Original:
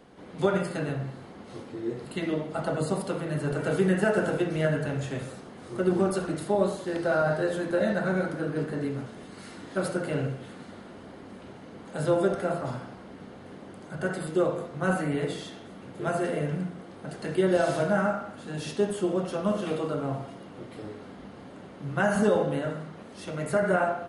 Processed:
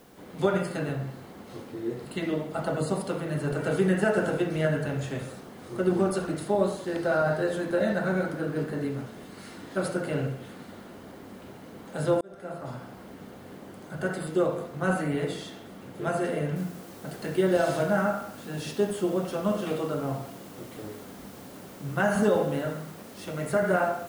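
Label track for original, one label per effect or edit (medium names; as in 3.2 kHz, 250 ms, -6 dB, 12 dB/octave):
12.210000	13.010000	fade in
16.560000	16.560000	noise floor step -63 dB -53 dB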